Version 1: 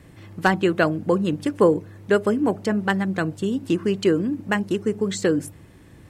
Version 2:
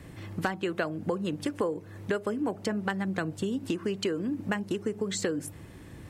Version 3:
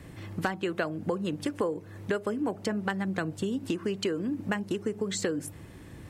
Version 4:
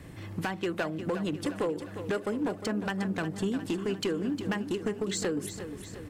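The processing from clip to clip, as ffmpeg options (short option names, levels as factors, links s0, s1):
-filter_complex "[0:a]acrossover=split=400[s0][s1];[s0]alimiter=limit=0.1:level=0:latency=1:release=450[s2];[s2][s1]amix=inputs=2:normalize=0,acompressor=threshold=0.0355:ratio=5,volume=1.19"
-af anull
-filter_complex "[0:a]asoftclip=type=hard:threshold=0.0596,asplit=2[s0][s1];[s1]aecho=0:1:356|712|1068|1424|1780|2136:0.299|0.167|0.0936|0.0524|0.0294|0.0164[s2];[s0][s2]amix=inputs=2:normalize=0"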